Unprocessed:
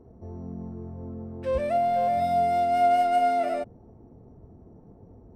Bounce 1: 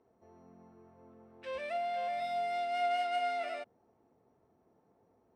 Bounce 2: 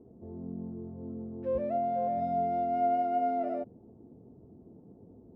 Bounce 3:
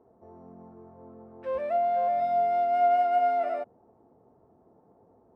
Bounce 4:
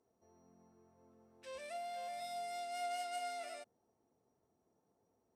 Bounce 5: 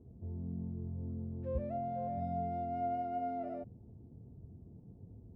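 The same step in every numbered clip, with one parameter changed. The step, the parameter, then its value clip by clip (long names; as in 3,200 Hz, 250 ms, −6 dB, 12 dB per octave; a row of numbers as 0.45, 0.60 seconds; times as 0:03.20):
resonant band-pass, frequency: 2,800, 280, 990, 7,200, 110 Hertz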